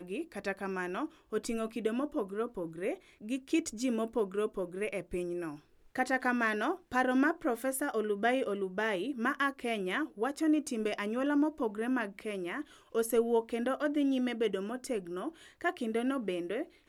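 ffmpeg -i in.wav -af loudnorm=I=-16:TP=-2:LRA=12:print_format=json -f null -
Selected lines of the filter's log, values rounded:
"input_i" : "-33.6",
"input_tp" : "-15.3",
"input_lra" : "3.6",
"input_thresh" : "-43.6",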